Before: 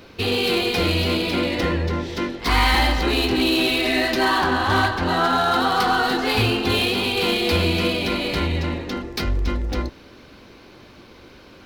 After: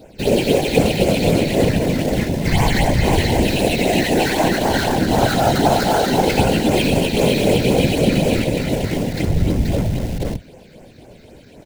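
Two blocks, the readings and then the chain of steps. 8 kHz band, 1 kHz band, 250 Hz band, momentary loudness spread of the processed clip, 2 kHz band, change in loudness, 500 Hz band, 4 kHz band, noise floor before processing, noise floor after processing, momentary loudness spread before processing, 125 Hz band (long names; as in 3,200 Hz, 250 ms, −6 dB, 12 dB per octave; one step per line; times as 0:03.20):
+8.5 dB, +1.0 dB, +6.0 dB, 5 LU, −1.5 dB, +3.0 dB, +6.5 dB, −2.0 dB, −46 dBFS, −44 dBFS, 7 LU, +7.0 dB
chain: running median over 9 samples
all-pass phaser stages 6, 3.9 Hz, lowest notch 720–4,200 Hz
multi-tap delay 114/480 ms −17/−3.5 dB
in parallel at −6.5 dB: comparator with hysteresis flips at −23.5 dBFS
on the sum: phaser with its sweep stopped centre 320 Hz, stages 6
random phases in short frames
level +6.5 dB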